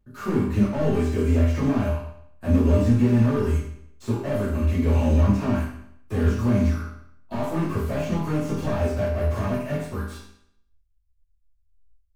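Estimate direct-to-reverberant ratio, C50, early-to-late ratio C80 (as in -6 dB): -10.0 dB, 2.5 dB, 6.0 dB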